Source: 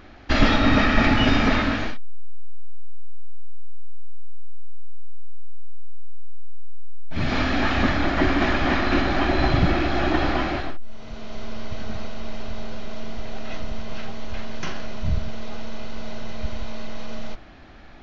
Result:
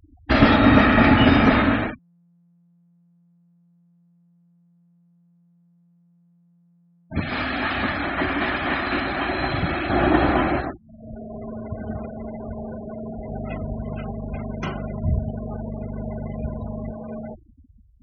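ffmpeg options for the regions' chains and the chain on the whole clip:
-filter_complex "[0:a]asettb=1/sr,asplit=3[a][b][c];[a]atrim=end=7.204[d];[b]atrim=start=7.2:end=9.9,asetpts=PTS-STARTPTS,afade=t=in:d=0.004:c=qsin,afade=t=out:st=2.696:d=0.004:c=qsin,tiltshelf=f=1.1k:g=-5.5,flanger=delay=4.5:depth=8.5:regen=88:speed=1.4:shape=triangular[e];[c]atrim=start=9.896[f];[d][e]acrossfade=d=0.004:c1=hsin:c2=qsin[g];[g][f]acrossfade=d=0.004:c1=qsin:c2=hsin,asettb=1/sr,asplit=3[h][i][j];[h]atrim=end=13.284[k];[i]atrim=start=13.28:end=16.92,asetpts=PTS-STARTPTS,afade=t=in:d=0.004:c=qsin,afade=t=out:st=3.636:d=0.004:c=qsin,bandreject=f=1.7k:w=9,aeval=exprs='val(0)+0.0224*(sin(2*PI*50*n/s)+sin(2*PI*2*50*n/s)/2+sin(2*PI*3*50*n/s)/3+sin(2*PI*4*50*n/s)/4+sin(2*PI*5*50*n/s)/5)':c=same[l];[j]atrim=start=16.916[m];[k][l]acrossfade=d=0.004:c1=hsin:c2=qsin[n];[n][m]acrossfade=d=0.004:c1=qsin:c2=hsin,afftfilt=real='re*gte(hypot(re,im),0.0282)':imag='im*gte(hypot(re,im),0.0282)':win_size=1024:overlap=0.75,highpass=68,highshelf=f=3.7k:g=-12,volume=5dB"

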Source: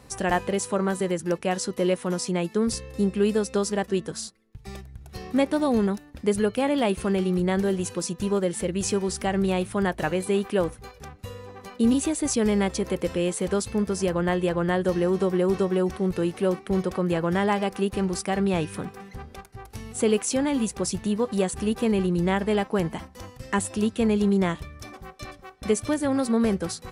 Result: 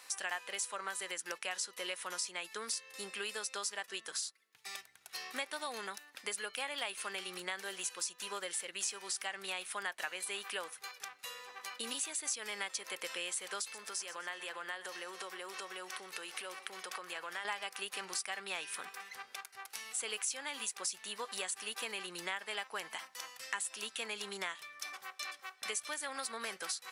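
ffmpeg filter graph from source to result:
-filter_complex "[0:a]asettb=1/sr,asplit=3[a][b][c];[a]atrim=end=13.614[d];[b]atrim=start=13.61:end=17.45,asetpts=PTS-STARTPTS,afade=t=in:d=0.004:c=qsin,afade=t=out:st=3.836:d=0.004:c=qsin,highpass=f=230:p=1,acompressor=threshold=-31dB:ratio=3:attack=3.2:release=140:knee=1:detection=peak,aecho=1:1:125|250|375|500:0.15|0.0658|0.029|0.0127,atrim=end_sample=169344[e];[c]atrim=start=17.446[f];[d][e]acrossfade=d=0.004:c1=hsin:c2=qsin[g];[g][f]acrossfade=d=0.004:c1=qsin:c2=hsin,highpass=1.5k,acompressor=threshold=-42dB:ratio=3,volume=4dB"

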